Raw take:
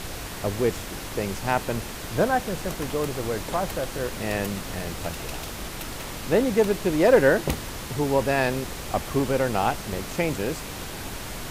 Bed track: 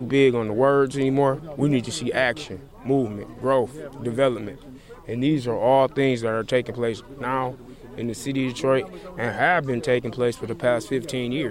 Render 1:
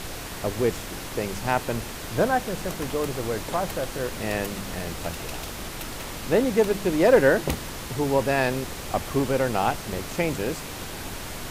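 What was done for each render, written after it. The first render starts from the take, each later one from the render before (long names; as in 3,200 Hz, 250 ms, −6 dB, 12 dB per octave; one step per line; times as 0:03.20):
hum removal 50 Hz, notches 4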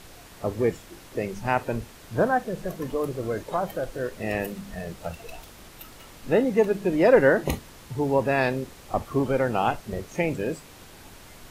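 noise reduction from a noise print 12 dB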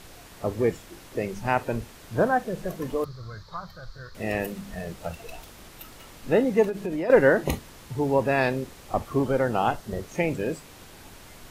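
0:03.04–0:04.15: drawn EQ curve 100 Hz 0 dB, 180 Hz −8 dB, 270 Hz −23 dB, 760 Hz −17 dB, 1,200 Hz −1 dB, 2,800 Hz −18 dB, 4,300 Hz +5 dB, 9,000 Hz −22 dB, 14,000 Hz −17 dB
0:06.69–0:07.10: downward compressor 10 to 1, threshold −25 dBFS
0:09.25–0:10.03: parametric band 2,400 Hz −7 dB 0.25 octaves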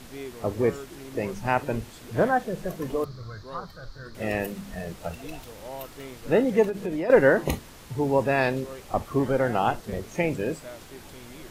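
mix in bed track −21 dB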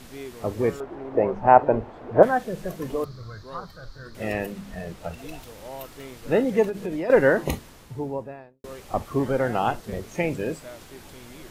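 0:00.80–0:02.23: drawn EQ curve 170 Hz 0 dB, 750 Hz +13 dB, 9,800 Hz −29 dB
0:04.33–0:05.18: high-shelf EQ 5,900 Hz −5.5 dB
0:07.52–0:08.64: fade out and dull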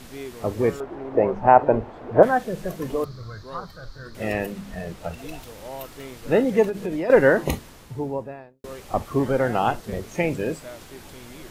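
level +2 dB
brickwall limiter −2 dBFS, peak gain reduction 2.5 dB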